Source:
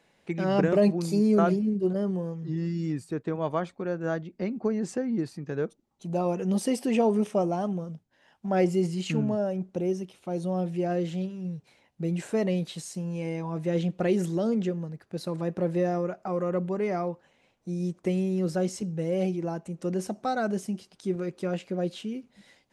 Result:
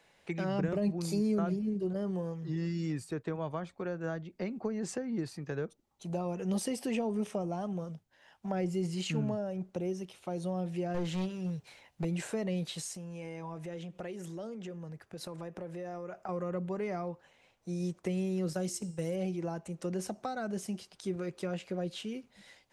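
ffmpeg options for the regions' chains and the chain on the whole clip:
-filter_complex "[0:a]asettb=1/sr,asplit=3[a][b][c];[a]atrim=end=10.944[d];[b]atrim=start=10.94:end=12.05,asetpts=PTS-STARTPTS,afade=t=in:d=0.004:c=qsin,afade=t=out:st=1.106:d=0.004:c=qsin,equalizer=f=230:w=0.3:g=-2.5,acontrast=38,aeval=exprs='clip(val(0),-1,0.0562)':c=same[e];[c]atrim=start=12.046[f];[d][e]acrossfade=d=0.004:c1=hsin:c2=qsin[g];[g][f]acrossfade=d=0.004:c1=qsin:c2=hsin,asettb=1/sr,asplit=3[h][i][j];[h]atrim=end=12.864[k];[i]atrim=start=12.86:end=16.29,asetpts=PTS-STARTPTS,afade=t=in:d=0.004:c=qsin,afade=t=out:st=3.426:d=0.004:c=qsin,equalizer=f=4.2k:t=o:w=0.32:g=-5,acompressor=threshold=-36dB:ratio=5:attack=3.2:release=140:knee=1:detection=peak[l];[j]atrim=start=16.286[m];[k][l]acrossfade=d=0.004:c1=hsin:c2=qsin[n];[n][m]acrossfade=d=0.004:c1=qsin:c2=hsin,asettb=1/sr,asplit=3[o][p][q];[o]atrim=end=18.534[r];[p]atrim=start=18.53:end=19.16,asetpts=PTS-STARTPTS,afade=t=in:d=0.004:c=qsin,afade=t=out:st=0.626:d=0.004:c=qsin,aemphasis=mode=production:type=50kf,agate=range=-10dB:threshold=-33dB:ratio=16:release=100:detection=peak,bandreject=f=351.5:t=h:w=4,bandreject=f=703:t=h:w=4,bandreject=f=1.0545k:t=h:w=4,bandreject=f=1.406k:t=h:w=4,bandreject=f=1.7575k:t=h:w=4,bandreject=f=2.109k:t=h:w=4,bandreject=f=2.4605k:t=h:w=4,bandreject=f=2.812k:t=h:w=4,bandreject=f=3.1635k:t=h:w=4,bandreject=f=3.515k:t=h:w=4,bandreject=f=3.8665k:t=h:w=4,bandreject=f=4.218k:t=h:w=4,bandreject=f=4.5695k:t=h:w=4,bandreject=f=4.921k:t=h:w=4,bandreject=f=5.2725k:t=h:w=4,bandreject=f=5.624k:t=h:w=4,bandreject=f=5.9755k:t=h:w=4,bandreject=f=6.327k:t=h:w=4,bandreject=f=6.6785k:t=h:w=4,bandreject=f=7.03k:t=h:w=4,bandreject=f=7.3815k:t=h:w=4,bandreject=f=7.733k:t=h:w=4,bandreject=f=8.0845k:t=h:w=4,bandreject=f=8.436k:t=h:w=4,bandreject=f=8.7875k:t=h:w=4,bandreject=f=9.139k:t=h:w=4,bandreject=f=9.4905k:t=h:w=4,bandreject=f=9.842k:t=h:w=4[s];[q]atrim=start=19.156[t];[r][s]acrossfade=d=0.004:c1=hsin:c2=qsin[u];[u][t]acrossfade=d=0.004:c1=qsin:c2=hsin,equalizer=f=230:w=0.77:g=-7.5,acrossover=split=260[v][w];[w]acompressor=threshold=-37dB:ratio=6[x];[v][x]amix=inputs=2:normalize=0,volume=1.5dB"

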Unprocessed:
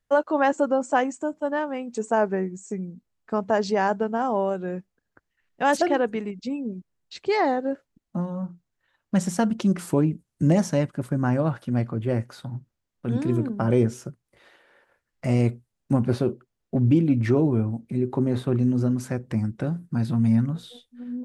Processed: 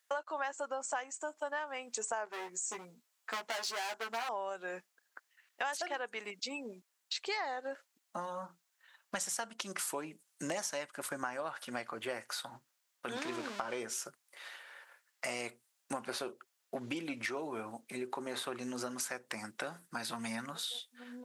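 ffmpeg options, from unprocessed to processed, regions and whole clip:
-filter_complex "[0:a]asettb=1/sr,asplit=3[a][b][c];[a]atrim=end=2.254[d];[b]atrim=start=2.25:end=4.29,asetpts=PTS-STARTPTS,afade=t=in:d=0.004:c=qsin,afade=t=out:st=2.036:d=0.004:c=qsin,asoftclip=type=hard:threshold=-27dB,asplit=2[e][f];[f]adelay=13,volume=-3.5dB[g];[e][g]amix=inputs=2:normalize=0,atrim=end_sample=89964[h];[c]atrim=start=4.286[i];[d][h]acrossfade=d=0.004:c1=hsin:c2=qsin[j];[j][i]acrossfade=d=0.004:c1=qsin:c2=hsin,asettb=1/sr,asplit=3[k][l][m];[k]atrim=end=13.164[n];[l]atrim=start=13.16:end=13.8,asetpts=PTS-STARTPTS,afade=t=in:d=0.004:c=qsin,afade=t=out:st=0.636:d=0.004:c=qsin,aeval=exprs='val(0)+0.5*0.015*sgn(val(0))':c=same,lowpass=5.7k[o];[m]atrim=start=13.796[p];[n][o]acrossfade=d=0.004:c1=hsin:c2=qsin[q];[q][p]acrossfade=d=0.004:c1=qsin:c2=hsin,highpass=950,highshelf=f=4.6k:g=6.5,acompressor=threshold=-42dB:ratio=6,volume=6.5dB"

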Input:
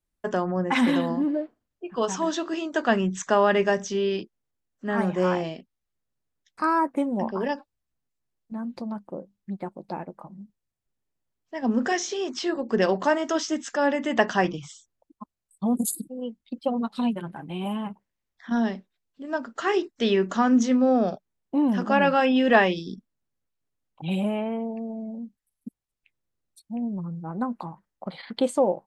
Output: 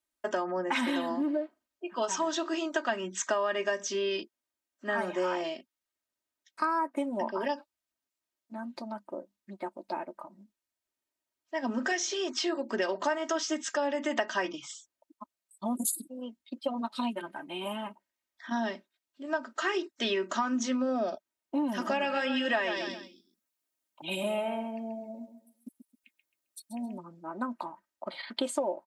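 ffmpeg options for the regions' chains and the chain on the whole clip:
-filter_complex "[0:a]asettb=1/sr,asplit=3[a][b][c];[a]atrim=end=21.664[d];[b]atrim=start=21.66:end=26.98,asetpts=PTS-STARTPTS,afade=t=in:d=0.004:c=qsin,afade=t=out:st=5.316:d=0.004:c=qsin,highshelf=f=7.4k:g=9,aecho=1:1:133|266|399:0.335|0.0971|0.0282,atrim=end_sample=234612[e];[c]atrim=start=26.976[f];[d][e]acrossfade=d=0.004:c1=hsin:c2=qsin[g];[g][f]acrossfade=d=0.004:c1=qsin:c2=hsin,highpass=f=650:p=1,aecho=1:1:3.2:0.71,acompressor=threshold=-26dB:ratio=6"

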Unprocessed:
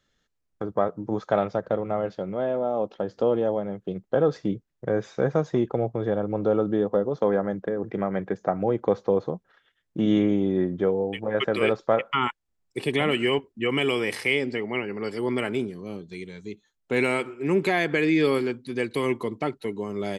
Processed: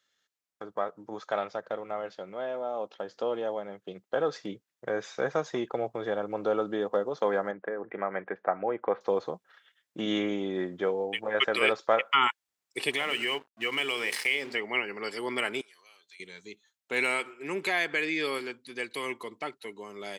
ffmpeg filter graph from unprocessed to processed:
-filter_complex "[0:a]asettb=1/sr,asplit=3[a][b][c];[a]atrim=end=7.514[d];[b]atrim=start=7.51:end=9.01,asetpts=PTS-STARTPTS,afade=t=in:d=0.004:c=qsin,afade=t=out:st=1.496:d=0.004:c=qsin,lowpass=f=2.3k:w=0.5412,lowpass=f=2.3k:w=1.3066,lowshelf=f=180:g=-8.5[e];[c]atrim=start=9.006[f];[d][e]acrossfade=d=0.004:c1=hsin:c2=qsin[g];[g][f]acrossfade=d=0.004:c1=qsin:c2=hsin,asettb=1/sr,asplit=3[h][i][j];[h]atrim=end=12.914[k];[i]atrim=start=12.91:end=14.55,asetpts=PTS-STARTPTS,afade=t=in:d=0.004:c=qsin,afade=t=out:st=1.636:d=0.004:c=qsin,bandreject=f=50:t=h:w=6,bandreject=f=100:t=h:w=6,bandreject=f=150:t=h:w=6,bandreject=f=200:t=h:w=6,bandreject=f=250:t=h:w=6,bandreject=f=300:t=h:w=6,bandreject=f=350:t=h:w=6,bandreject=f=400:t=h:w=6,bandreject=f=450:t=h:w=6,aeval=exprs='sgn(val(0))*max(abs(val(0))-0.00473,0)':c=same,acompressor=threshold=-26dB:ratio=2.5:attack=3.2:release=140:knee=1:detection=peak[l];[j]atrim=start=14.546[m];[k][l]acrossfade=d=0.004:c1=hsin:c2=qsin[n];[n][m]acrossfade=d=0.004:c1=qsin:c2=hsin,asettb=1/sr,asplit=3[o][p][q];[o]atrim=end=15.614[r];[p]atrim=start=15.61:end=16.2,asetpts=PTS-STARTPTS,afade=t=in:d=0.004:c=qsin,afade=t=out:st=0.586:d=0.004:c=qsin,highpass=1.4k,acompressor=threshold=-55dB:ratio=2.5:attack=3.2:release=140:knee=1:detection=peak[s];[q]atrim=start=16.196[t];[r][s]acrossfade=d=0.004:c1=hsin:c2=qsin[u];[u][t]acrossfade=d=0.004:c1=qsin:c2=hsin,highpass=f=1.4k:p=1,dynaudnorm=f=270:g=31:m=5dB"

